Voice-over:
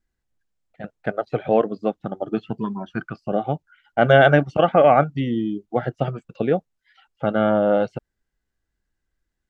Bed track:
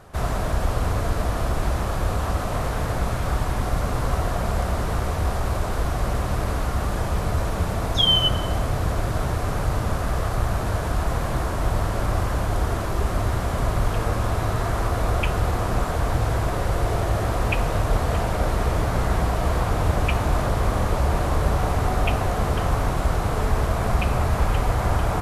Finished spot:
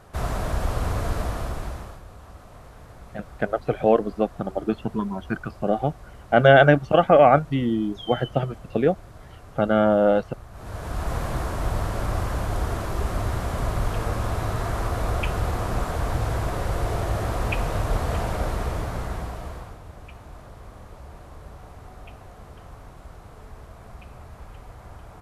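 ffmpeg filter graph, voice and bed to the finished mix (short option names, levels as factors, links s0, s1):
-filter_complex "[0:a]adelay=2350,volume=1[s0];[1:a]volume=5.62,afade=t=out:st=1.15:d=0.87:silence=0.125893,afade=t=in:st=10.52:d=0.63:silence=0.133352,afade=t=out:st=18.29:d=1.51:silence=0.11885[s1];[s0][s1]amix=inputs=2:normalize=0"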